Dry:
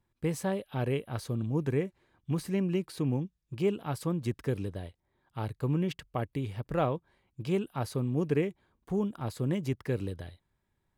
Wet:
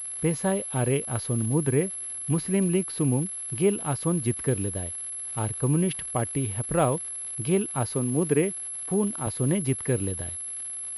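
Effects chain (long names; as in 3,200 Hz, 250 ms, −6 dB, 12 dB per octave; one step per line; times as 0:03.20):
0:07.94–0:09.27: high-pass filter 140 Hz
surface crackle 520 per second −44 dBFS
switching amplifier with a slow clock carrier 11,000 Hz
level +5.5 dB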